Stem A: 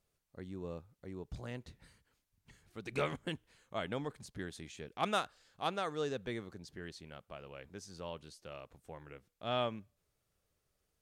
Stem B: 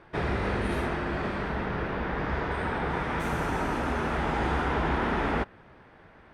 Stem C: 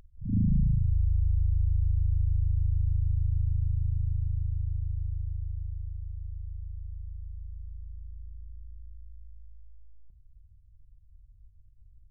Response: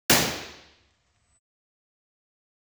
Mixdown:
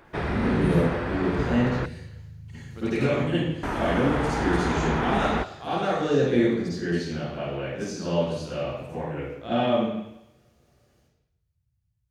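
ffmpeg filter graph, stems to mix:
-filter_complex "[0:a]alimiter=level_in=2.24:limit=0.0631:level=0:latency=1:release=157,volume=0.447,volume=1.33,asplit=2[s0][s1];[s1]volume=0.299[s2];[1:a]volume=1.06,asplit=3[s3][s4][s5];[s3]atrim=end=1.86,asetpts=PTS-STARTPTS,afade=t=out:st=1.856:d=0.004:c=hsin[s6];[s4]atrim=start=1.86:end=3.63,asetpts=PTS-STARTPTS,volume=0[s7];[s5]atrim=start=3.63,asetpts=PTS-STARTPTS,afade=t=in:d=0.004:c=hsin[s8];[s6][s7][s8]concat=n=3:v=0:a=1[s9];[2:a]highpass=190,volume=0.944,asplit=2[s10][s11];[s11]volume=0.0631[s12];[3:a]atrim=start_sample=2205[s13];[s2][s12]amix=inputs=2:normalize=0[s14];[s14][s13]afir=irnorm=-1:irlink=0[s15];[s0][s9][s10][s15]amix=inputs=4:normalize=0"

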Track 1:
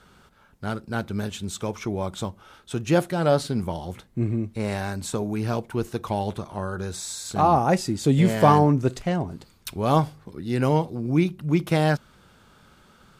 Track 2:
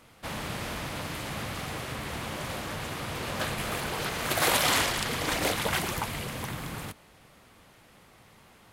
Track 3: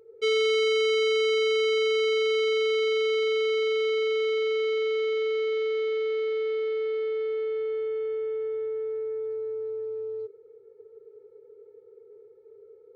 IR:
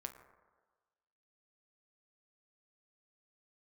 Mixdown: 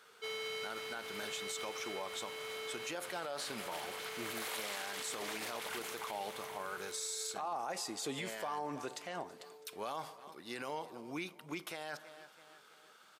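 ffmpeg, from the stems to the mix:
-filter_complex "[0:a]highpass=f=410:p=1,volume=0.596,asplit=4[s0][s1][s2][s3];[s1]volume=0.299[s4];[s2]volume=0.0668[s5];[1:a]volume=0.282,asplit=2[s6][s7];[s7]volume=0.251[s8];[2:a]volume=0.251[s9];[s3]apad=whole_len=571462[s10];[s9][s10]sidechaincompress=threshold=0.0282:ratio=8:attack=5.5:release=1360[s11];[3:a]atrim=start_sample=2205[s12];[s4][s12]afir=irnorm=-1:irlink=0[s13];[s5][s8]amix=inputs=2:normalize=0,aecho=0:1:327|654|981|1308|1635|1962|2289:1|0.5|0.25|0.125|0.0625|0.0312|0.0156[s14];[s0][s6][s11][s13][s14]amix=inputs=5:normalize=0,highpass=f=950:p=1,alimiter=level_in=2.11:limit=0.0631:level=0:latency=1:release=50,volume=0.473"

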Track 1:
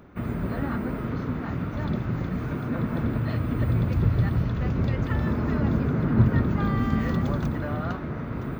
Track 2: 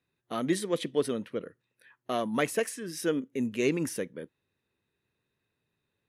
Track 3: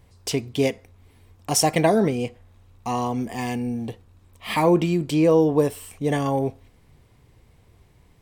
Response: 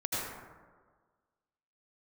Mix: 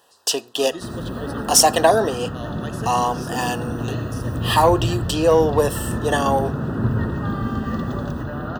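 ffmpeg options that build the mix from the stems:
-filter_complex "[0:a]adelay=650,volume=0.398,asplit=2[s0][s1];[s1]volume=0.447[s2];[1:a]equalizer=f=4700:w=1.5:g=7.5,adelay=250,volume=0.188,asplit=2[s3][s4];[s4]volume=0.335[s5];[2:a]highpass=580,volume=1.41[s6];[3:a]atrim=start_sample=2205[s7];[s2][s5]amix=inputs=2:normalize=0[s8];[s8][s7]afir=irnorm=-1:irlink=0[s9];[s0][s3][s6][s9]amix=inputs=4:normalize=0,asuperstop=centerf=2200:order=8:qfactor=3.3,lowshelf=f=250:g=-4.5,acontrast=49"

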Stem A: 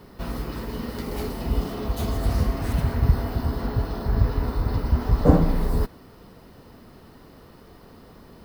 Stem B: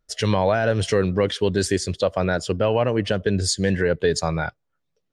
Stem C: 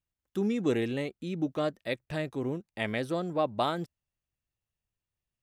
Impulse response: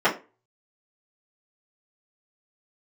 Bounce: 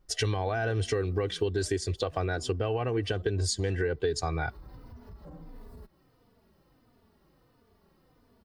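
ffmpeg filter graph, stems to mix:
-filter_complex "[0:a]acompressor=threshold=0.0562:ratio=6,asplit=2[s0][s1];[s1]adelay=3.3,afreqshift=-1.5[s2];[s0][s2]amix=inputs=2:normalize=1,volume=0.2,afade=t=in:st=4.06:d=0.26:silence=0.334965[s3];[1:a]lowshelf=f=130:g=8,aecho=1:1:2.6:0.7,volume=0.794[s4];[2:a]volume=0.211[s5];[s3][s5]amix=inputs=2:normalize=0,alimiter=level_in=5.96:limit=0.0631:level=0:latency=1:release=10,volume=0.168,volume=1[s6];[s4][s6]amix=inputs=2:normalize=0,acompressor=threshold=0.0447:ratio=4"

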